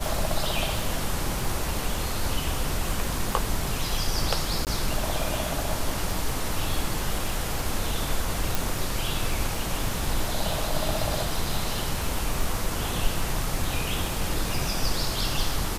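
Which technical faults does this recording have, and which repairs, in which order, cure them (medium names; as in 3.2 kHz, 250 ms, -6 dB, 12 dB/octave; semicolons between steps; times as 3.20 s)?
crackle 34 per s -30 dBFS
4.65–4.67 s: dropout 18 ms
8.55 s: pop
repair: de-click; interpolate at 4.65 s, 18 ms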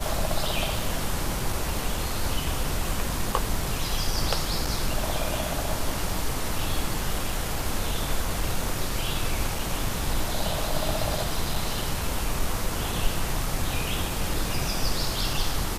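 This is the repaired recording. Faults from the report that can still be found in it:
nothing left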